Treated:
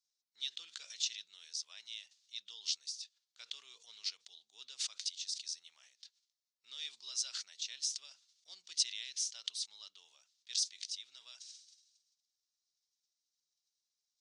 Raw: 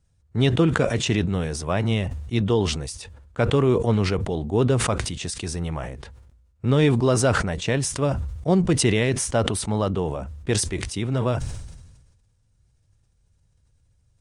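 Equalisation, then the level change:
flat-topped band-pass 4,900 Hz, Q 1.9
−3.0 dB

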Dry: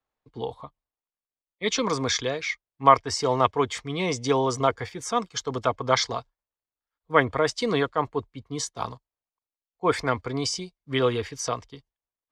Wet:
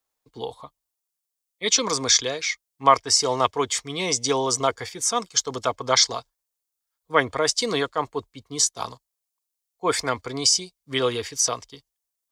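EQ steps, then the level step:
bass and treble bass −5 dB, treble +14 dB
0.0 dB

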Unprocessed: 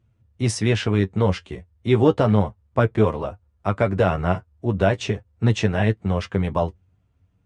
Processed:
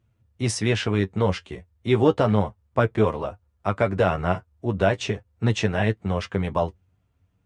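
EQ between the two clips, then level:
low-shelf EQ 350 Hz −4 dB
0.0 dB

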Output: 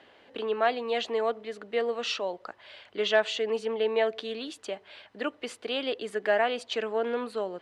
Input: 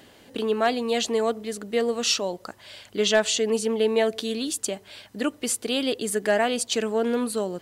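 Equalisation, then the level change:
low-pass filter 12,000 Hz 24 dB per octave
three-way crossover with the lows and the highs turned down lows −13 dB, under 390 Hz, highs −24 dB, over 3,700 Hz
−1.5 dB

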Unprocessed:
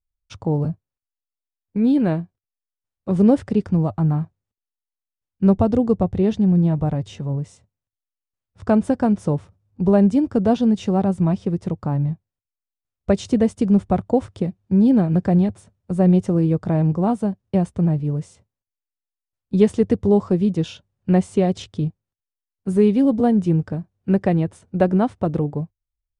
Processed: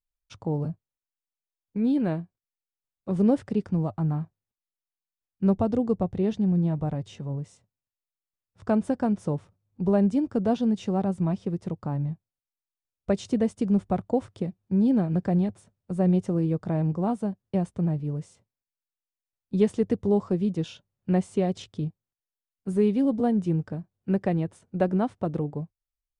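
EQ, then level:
parametric band 74 Hz −8.5 dB 0.68 octaves
−6.5 dB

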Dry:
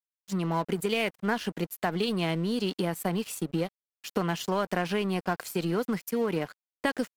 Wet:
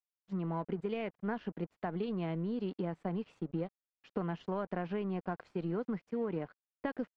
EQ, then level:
head-to-tape spacing loss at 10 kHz 45 dB
−5.5 dB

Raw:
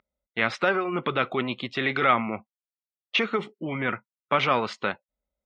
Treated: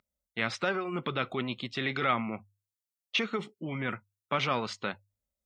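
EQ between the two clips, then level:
bass and treble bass +6 dB, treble +11 dB
mains-hum notches 50/100 Hz
−7.5 dB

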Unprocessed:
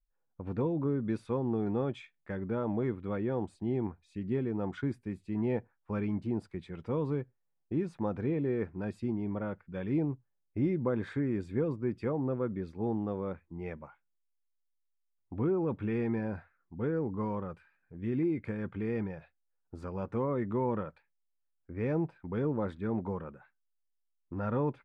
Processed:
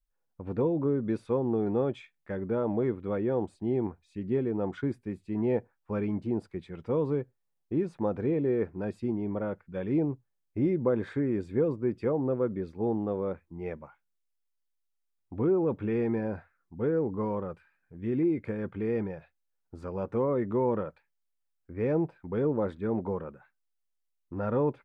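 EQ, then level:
dynamic equaliser 480 Hz, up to +6 dB, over −45 dBFS, Q 0.94
0.0 dB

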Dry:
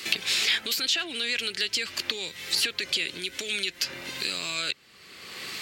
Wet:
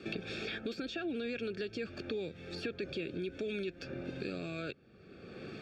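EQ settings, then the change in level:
moving average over 44 samples
high-frequency loss of the air 59 metres
+5.5 dB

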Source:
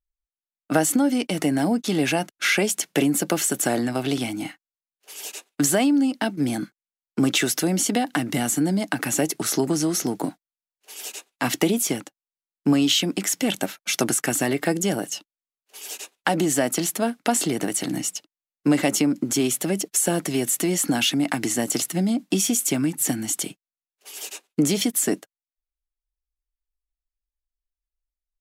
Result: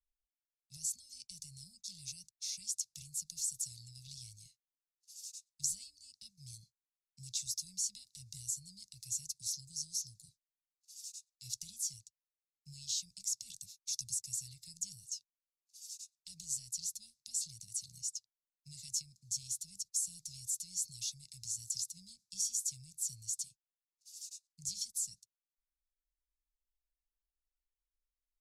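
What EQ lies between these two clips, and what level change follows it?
inverse Chebyshev band-stop filter 260–1,700 Hz, stop band 60 dB
low-pass filter 6,400 Hz 12 dB per octave
parametric band 3,100 Hz −12 dB 0.23 octaves
−6.0 dB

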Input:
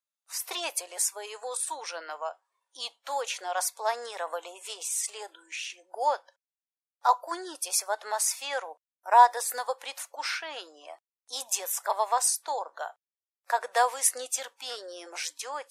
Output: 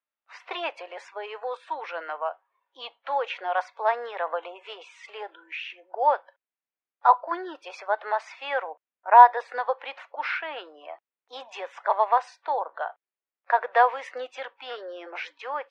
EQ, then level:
high-pass filter 250 Hz
low-pass filter 2,700 Hz 24 dB per octave
+5.0 dB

